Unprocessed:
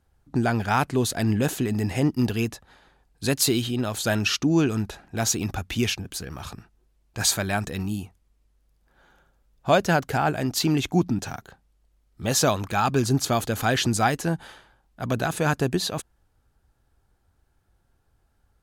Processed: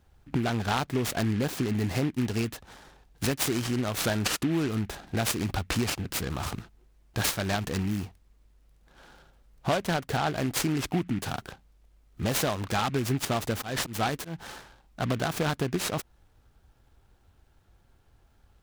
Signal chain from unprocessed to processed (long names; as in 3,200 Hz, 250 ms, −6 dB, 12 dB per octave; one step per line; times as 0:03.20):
downward compressor 4 to 1, threshold −31 dBFS, peak gain reduction 14.5 dB
0:13.53–0:14.36: volume swells 158 ms
short delay modulated by noise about 1,900 Hz, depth 0.068 ms
level +5 dB